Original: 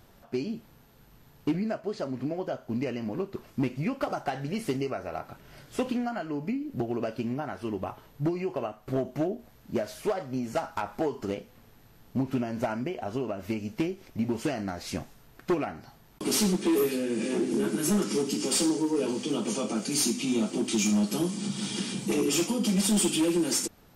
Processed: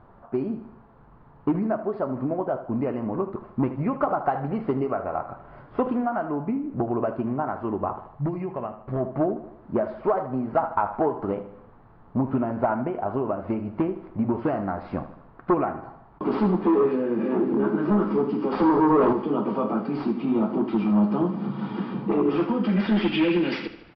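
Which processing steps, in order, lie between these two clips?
0:08.02–0:09.00: gain on a spectral selection 240–1,600 Hz −6 dB
0:18.52–0:19.13: leveller curve on the samples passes 3
low-pass filter sweep 1,100 Hz → 2,400 Hz, 0:22.23–0:23.30
on a send: repeating echo 77 ms, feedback 52%, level −13 dB
on the sum: downsampling to 11,025 Hz
level +3.5 dB

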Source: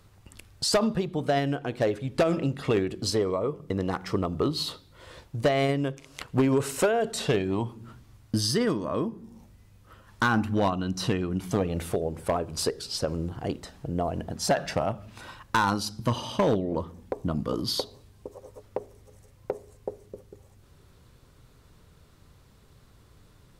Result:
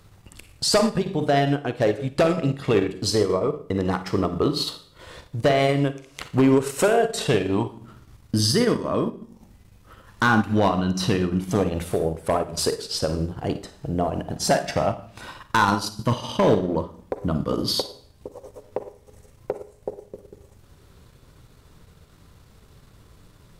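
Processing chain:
four-comb reverb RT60 0.53 s, DRR 7 dB
transient designer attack −2 dB, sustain −7 dB
level +5 dB

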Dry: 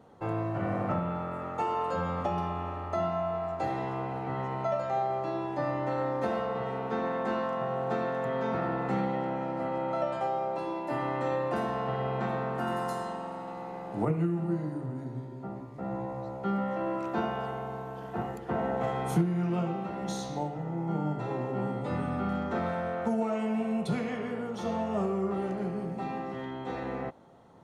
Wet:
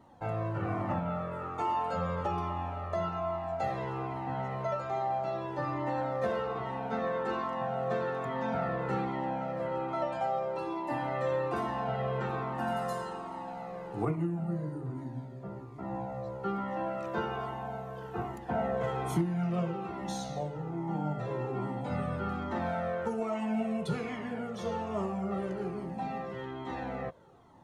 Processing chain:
0:14.15–0:14.86: parametric band 2,700 Hz −4.5 dB 2.6 octaves
flanger whose copies keep moving one way falling 1.2 Hz
level +3 dB

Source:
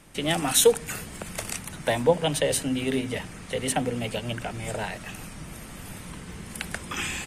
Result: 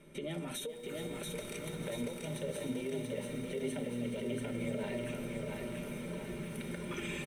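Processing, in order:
tuned comb filter 120 Hz, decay 1.7 s, mix 70%
convolution reverb RT60 0.15 s, pre-delay 3 ms, DRR 18 dB
downward compressor, threshold −31 dBFS, peak gain reduction 21.5 dB
brickwall limiter −27 dBFS, peak gain reduction 8.5 dB
comb filter 5.1 ms, depth 47%
feedback echo with a high-pass in the loop 425 ms, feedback 81%, high-pass 420 Hz, level −13 dB
feedback echo at a low word length 685 ms, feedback 55%, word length 10 bits, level −3 dB
level −4.5 dB

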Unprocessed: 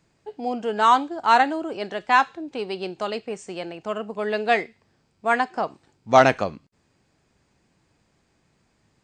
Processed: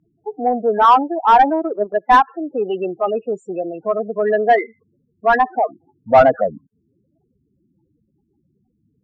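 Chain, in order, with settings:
spectral peaks only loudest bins 8
0:01.50–0:02.28: transient designer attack +4 dB, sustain −11 dB
mid-hump overdrive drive 17 dB, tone 1,000 Hz, clips at −3.5 dBFS
level +4 dB

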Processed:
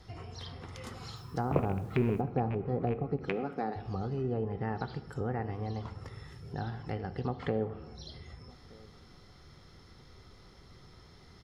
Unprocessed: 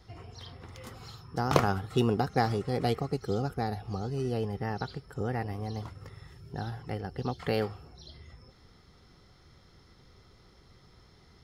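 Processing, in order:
loose part that buzzes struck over −27 dBFS, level −12 dBFS
0:03.29–0:03.76: high-pass filter 200 Hz 24 dB per octave
treble cut that deepens with the level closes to 650 Hz, closed at −24.5 dBFS
in parallel at −0.5 dB: downward compressor, threshold −42 dBFS, peak gain reduction 21.5 dB
0:01.16–0:02.21: on the sum: bit-depth reduction 10 bits, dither none
0:04.33–0:04.75: Savitzky-Golay smoothing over 15 samples
slap from a distant wall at 210 metres, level −24 dB
on a send at −11 dB: convolution reverb RT60 0.85 s, pre-delay 7 ms
on the sum: level −3.5 dB

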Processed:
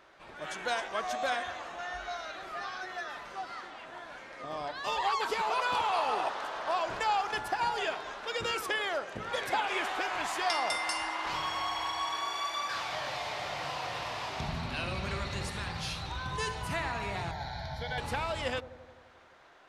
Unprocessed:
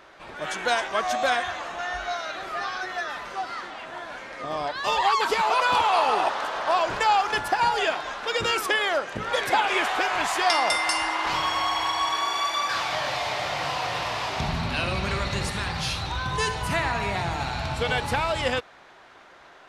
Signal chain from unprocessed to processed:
0:17.31–0:17.98: phaser with its sweep stopped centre 1,800 Hz, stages 8
delay with a low-pass on its return 86 ms, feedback 70%, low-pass 710 Hz, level −13 dB
level −8.5 dB

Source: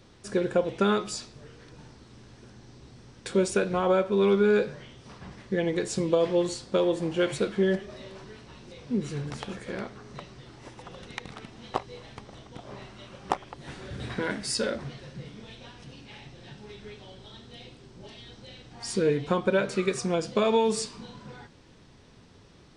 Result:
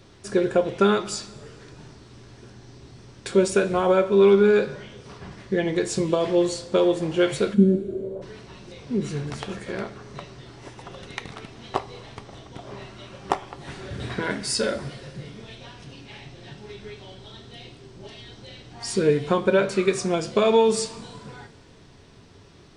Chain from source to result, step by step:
0:07.53–0:08.21: low-pass with resonance 210 Hz → 540 Hz, resonance Q 7
coupled-rooms reverb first 0.23 s, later 2 s, from −18 dB, DRR 9 dB
level +3.5 dB

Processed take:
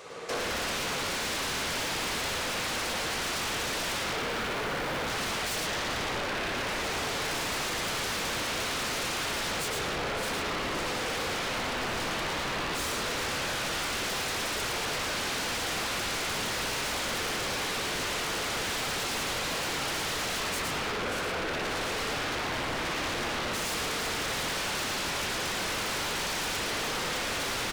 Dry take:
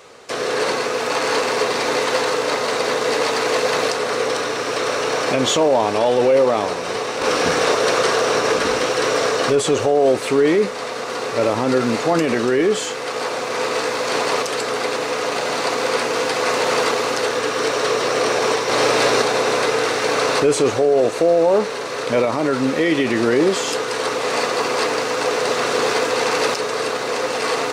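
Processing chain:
0:04.02–0:05.08: running median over 25 samples
downward compressor, threshold −17 dBFS, peak gain reduction 6.5 dB
soft clipping −25 dBFS, distortion −8 dB
single-tap delay 110 ms −4 dB
spring reverb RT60 2.3 s, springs 58 ms, chirp 60 ms, DRR −4.5 dB
wave folding −24.5 dBFS
level −2.5 dB

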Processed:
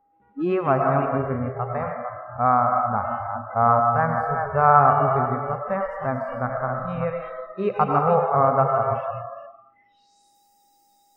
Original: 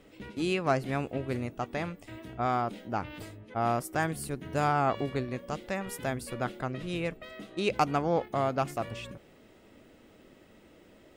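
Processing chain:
delay that plays each chunk backwards 263 ms, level −7 dB
low-pass filter sweep 1,200 Hz → 14,000 Hz, 0:09.64–0:10.37
steady tone 810 Hz −44 dBFS
comb and all-pass reverb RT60 1.5 s, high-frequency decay 0.75×, pre-delay 70 ms, DRR 4.5 dB
noise reduction from a noise print of the clip's start 26 dB
harmonic and percussive parts rebalanced harmonic +7 dB

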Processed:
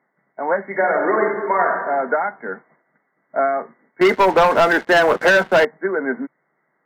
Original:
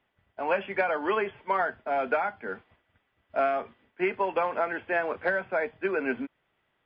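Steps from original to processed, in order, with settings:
brick-wall band-pass 130–2,200 Hz
0:00.69–0:01.77: thrown reverb, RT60 1.3 s, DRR 0.5 dB
0:04.01–0:05.65: leveller curve on the samples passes 3
level +7 dB

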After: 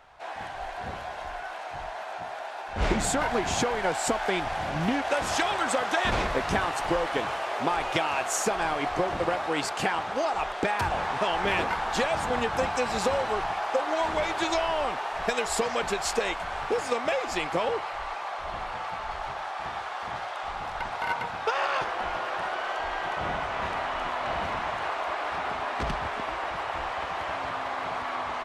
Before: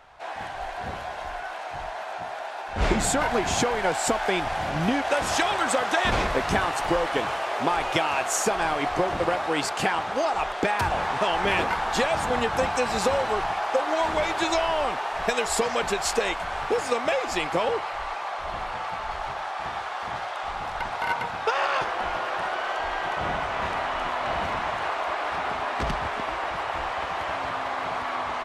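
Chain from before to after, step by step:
highs frequency-modulated by the lows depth 0.2 ms
level −2.5 dB

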